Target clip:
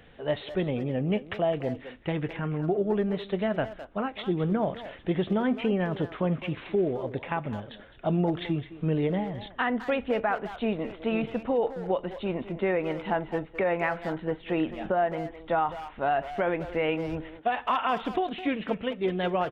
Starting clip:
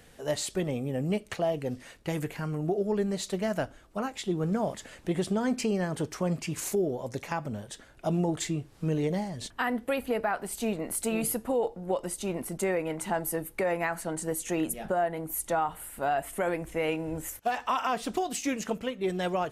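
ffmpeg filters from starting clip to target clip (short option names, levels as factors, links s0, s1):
-filter_complex "[0:a]aresample=8000,aresample=44100,asplit=2[s0][s1];[s1]adelay=210,highpass=300,lowpass=3400,asoftclip=type=hard:threshold=0.0501,volume=0.282[s2];[s0][s2]amix=inputs=2:normalize=0,volume=1.26"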